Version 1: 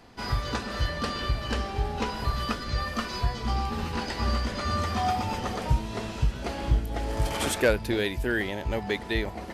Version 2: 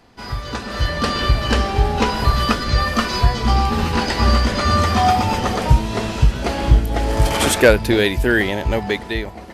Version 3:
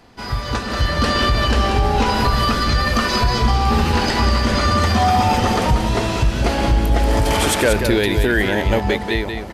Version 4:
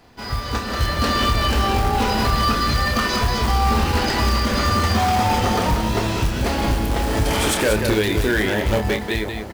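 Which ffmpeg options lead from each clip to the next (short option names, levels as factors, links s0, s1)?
-af "dynaudnorm=f=150:g=11:m=3.98,volume=1.12"
-af "alimiter=limit=0.282:level=0:latency=1:release=64,aecho=1:1:185:0.447,volume=1.41"
-filter_complex "[0:a]acrusher=bits=5:mode=log:mix=0:aa=0.000001,aeval=exprs='0.316*(abs(mod(val(0)/0.316+3,4)-2)-1)':c=same,asplit=2[s0][s1];[s1]adelay=28,volume=0.473[s2];[s0][s2]amix=inputs=2:normalize=0,volume=0.75"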